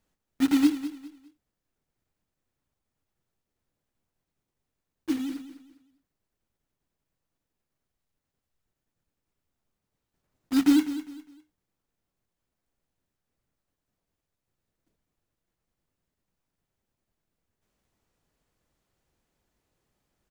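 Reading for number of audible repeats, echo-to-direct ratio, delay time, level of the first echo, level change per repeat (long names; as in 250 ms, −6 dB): 3, −12.5 dB, 203 ms, −13.0 dB, −10.5 dB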